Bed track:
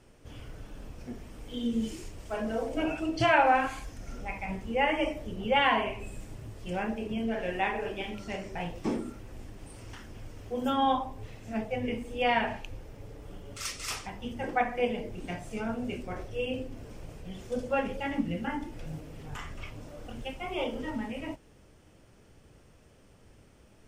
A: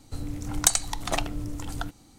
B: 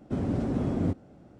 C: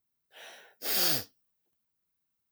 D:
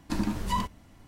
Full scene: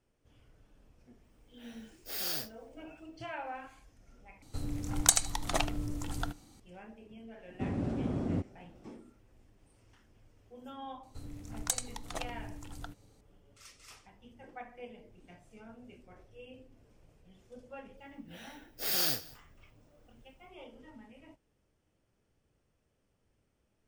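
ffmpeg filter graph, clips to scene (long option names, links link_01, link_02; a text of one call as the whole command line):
ffmpeg -i bed.wav -i cue0.wav -i cue1.wav -i cue2.wav -filter_complex "[3:a]asplit=2[link_01][link_02];[1:a]asplit=2[link_03][link_04];[0:a]volume=-18.5dB[link_05];[link_03]aecho=1:1:75:0.133[link_06];[link_02]aecho=1:1:190:0.0794[link_07];[link_05]asplit=2[link_08][link_09];[link_08]atrim=end=4.424[link_10];[link_06]atrim=end=2.18,asetpts=PTS-STARTPTS,volume=-3.5dB[link_11];[link_09]atrim=start=6.596[link_12];[link_01]atrim=end=2.51,asetpts=PTS-STARTPTS,volume=-8.5dB,afade=type=in:duration=0.004:curve=hsin,afade=type=out:start_time=2.506:duration=0.004:curve=hsin,adelay=1240[link_13];[2:a]atrim=end=1.39,asetpts=PTS-STARTPTS,volume=-5.5dB,afade=type=in:duration=0.004:curve=hsin,afade=type=out:start_time=1.386:duration=0.004:curve=hsin,adelay=7490[link_14];[link_04]atrim=end=2.18,asetpts=PTS-STARTPTS,volume=-12dB,afade=type=in:duration=0.004:curve=hsin,afade=type=out:start_time=2.176:duration=0.004:curve=hsin,adelay=11030[link_15];[link_07]atrim=end=2.51,asetpts=PTS-STARTPTS,volume=-3dB,afade=type=in:duration=0.004:curve=hsin,afade=type=out:start_time=2.506:duration=0.004:curve=hsin,adelay=17970[link_16];[link_10][link_11]acrossfade=duration=0.004:curve1=hsin:curve2=hsin[link_17];[link_17][link_12]acrossfade=duration=0.004:curve1=hsin:curve2=hsin[link_18];[link_18][link_13][link_14][link_15][link_16]amix=inputs=5:normalize=0" out.wav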